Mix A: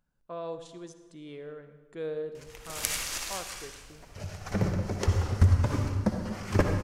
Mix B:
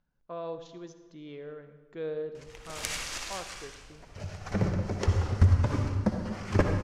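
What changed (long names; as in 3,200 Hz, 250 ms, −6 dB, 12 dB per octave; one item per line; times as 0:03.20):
speech: add Butterworth low-pass 6,900 Hz 96 dB per octave
master: add high-frequency loss of the air 51 metres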